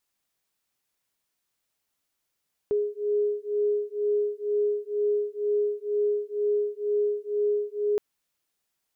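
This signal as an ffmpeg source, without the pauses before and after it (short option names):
-f lavfi -i "aevalsrc='0.0473*(sin(2*PI*414*t)+sin(2*PI*416.1*t))':d=5.27:s=44100"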